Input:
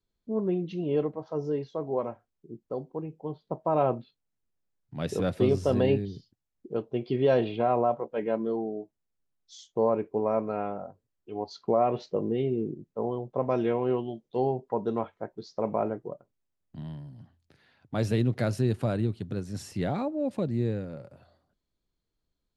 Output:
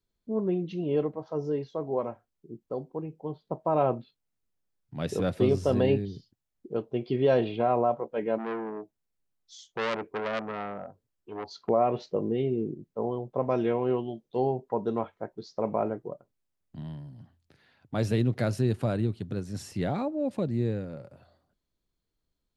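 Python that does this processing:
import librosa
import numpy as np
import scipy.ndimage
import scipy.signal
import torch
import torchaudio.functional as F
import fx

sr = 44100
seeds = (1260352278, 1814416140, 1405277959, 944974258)

y = fx.transformer_sat(x, sr, knee_hz=2200.0, at=(8.38, 11.69))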